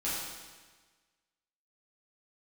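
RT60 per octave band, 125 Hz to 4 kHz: 1.4 s, 1.4 s, 1.4 s, 1.4 s, 1.4 s, 1.3 s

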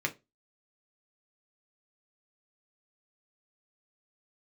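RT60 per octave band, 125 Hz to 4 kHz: 0.25 s, 0.25 s, 0.25 s, 0.20 s, 0.20 s, 0.20 s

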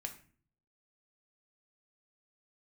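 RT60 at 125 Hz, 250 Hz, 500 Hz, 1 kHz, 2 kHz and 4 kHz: 0.80 s, 0.70 s, 0.50 s, 0.40 s, 0.45 s, 0.35 s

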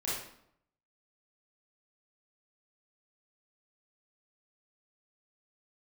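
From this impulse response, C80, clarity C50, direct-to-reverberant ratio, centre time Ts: 5.0 dB, -0.5 dB, -8.5 dB, 62 ms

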